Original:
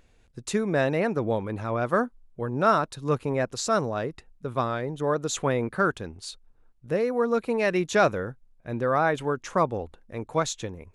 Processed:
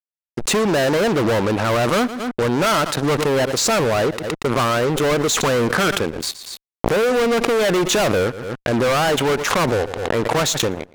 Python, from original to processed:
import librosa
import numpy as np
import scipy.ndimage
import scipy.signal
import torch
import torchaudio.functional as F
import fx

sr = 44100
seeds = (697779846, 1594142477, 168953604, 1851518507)

p1 = fx.highpass(x, sr, hz=350.0, slope=6)
p2 = fx.high_shelf(p1, sr, hz=2300.0, db=-8.0)
p3 = fx.fuzz(p2, sr, gain_db=39.0, gate_db=-48.0)
p4 = p3 + fx.echo_feedback(p3, sr, ms=117, feedback_pct=17, wet_db=-22.5, dry=0)
p5 = fx.pre_swell(p4, sr, db_per_s=38.0)
y = p5 * librosa.db_to_amplitude(-2.5)